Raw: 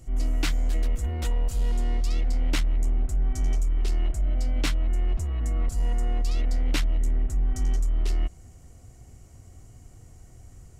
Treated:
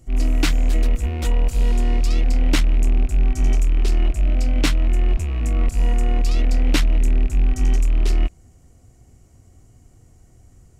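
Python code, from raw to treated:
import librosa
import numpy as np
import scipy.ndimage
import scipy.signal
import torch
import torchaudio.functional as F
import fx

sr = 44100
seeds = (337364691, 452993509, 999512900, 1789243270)

y = fx.rattle_buzz(x, sr, strikes_db=-30.0, level_db=-34.0)
y = fx.peak_eq(y, sr, hz=270.0, db=3.5, octaves=1.6)
y = fx.upward_expand(y, sr, threshold_db=-40.0, expansion=1.5)
y = F.gain(torch.from_numpy(y), 7.5).numpy()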